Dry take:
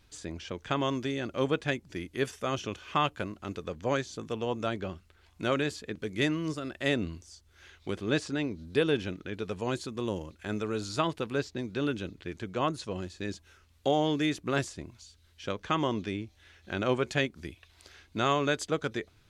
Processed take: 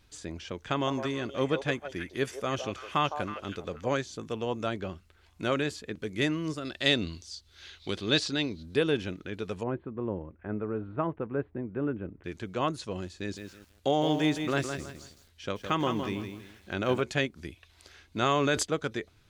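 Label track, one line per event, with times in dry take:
0.660000	3.940000	delay with a stepping band-pass 0.16 s, band-pass from 650 Hz, each repeat 1.4 oct, level -4.5 dB
6.650000	8.630000	bell 4100 Hz +13.5 dB 0.96 oct
9.630000	12.240000	Gaussian blur sigma 5.2 samples
13.200000	17.010000	lo-fi delay 0.162 s, feedback 35%, word length 9-bit, level -7 dB
18.220000	18.630000	fast leveller amount 70%

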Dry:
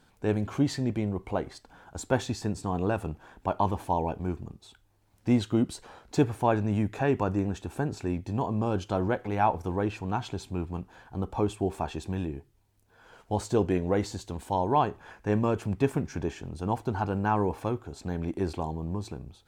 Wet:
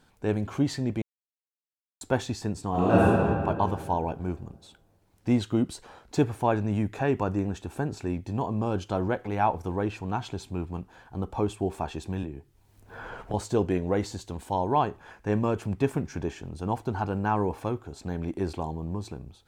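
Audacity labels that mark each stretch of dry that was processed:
1.020000	2.010000	mute
2.700000	3.120000	reverb throw, RT60 2.2 s, DRR -9.5 dB
12.230000	13.340000	three-band squash depth 100%

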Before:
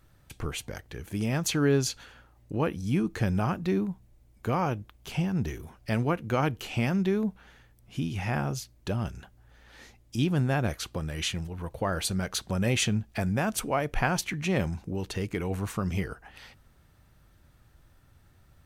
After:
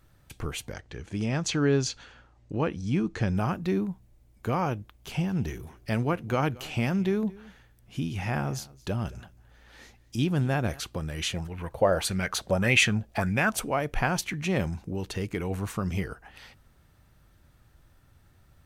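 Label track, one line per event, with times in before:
0.730000	3.370000	LPF 7500 Hz 24 dB/oct
4.950000	10.800000	echo 0.221 s -22 dB
11.300000	13.620000	LFO bell 1.7 Hz 520–2500 Hz +13 dB

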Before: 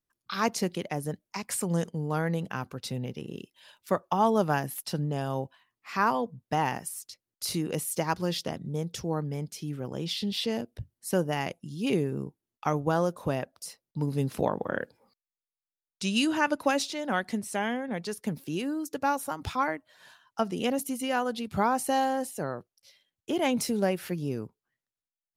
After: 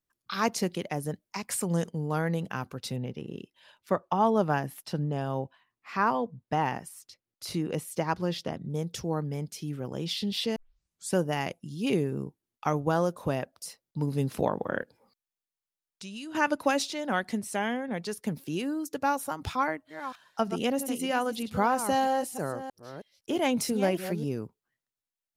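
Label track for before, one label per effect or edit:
2.960000	8.700000	high shelf 4700 Hz -10.5 dB
10.560000	10.560000	tape start 0.59 s
14.820000	16.350000	compressor 2.5:1, threshold -45 dBFS
19.520000	24.240000	reverse delay 0.318 s, level -10 dB

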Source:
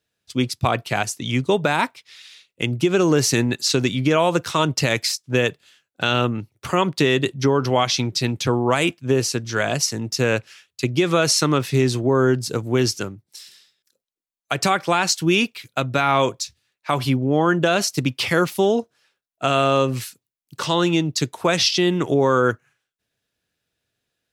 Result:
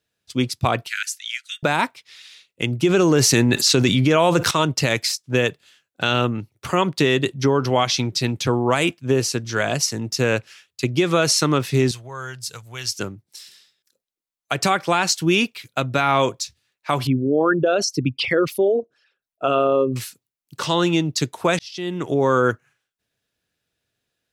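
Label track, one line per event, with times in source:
0.870000	1.630000	steep high-pass 1400 Hz 96 dB/oct
2.850000	4.510000	fast leveller amount 70%
11.910000	12.990000	passive tone stack bass-middle-treble 10-0-10
17.070000	19.960000	formant sharpening exponent 2
21.590000	22.300000	fade in

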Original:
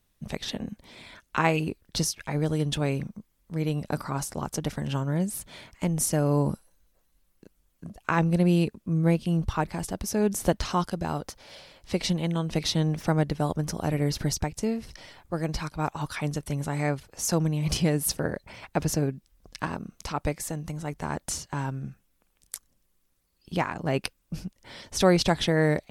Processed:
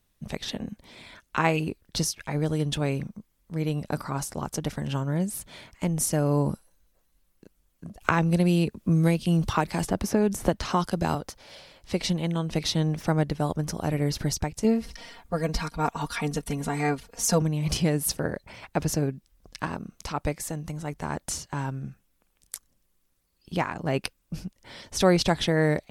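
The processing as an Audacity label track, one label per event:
8.010000	11.150000	three-band squash depth 100%
14.640000	17.420000	comb 4.3 ms, depth 99%

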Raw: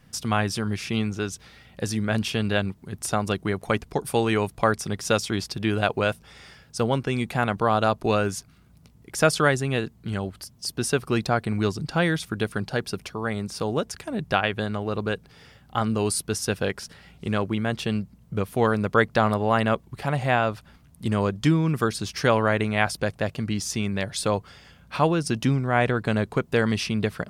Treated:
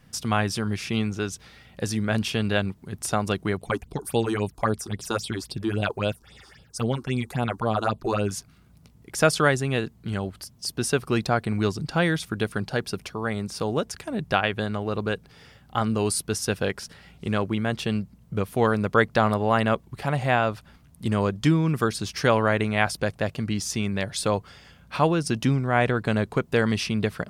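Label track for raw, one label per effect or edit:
3.570000	8.310000	phaser stages 6, 3.7 Hz, lowest notch 140–1900 Hz

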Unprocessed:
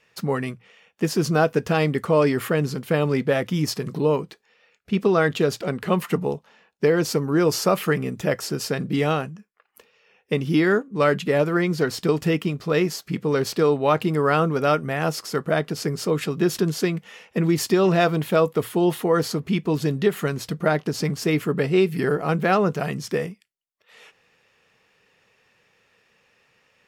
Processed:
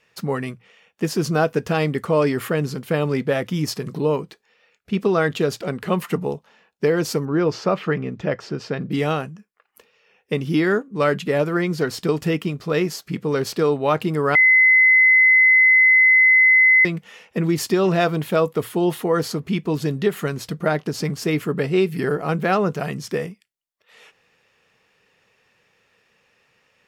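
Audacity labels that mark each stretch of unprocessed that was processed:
7.250000	8.910000	air absorption 180 m
14.350000	16.850000	bleep 2040 Hz -10 dBFS

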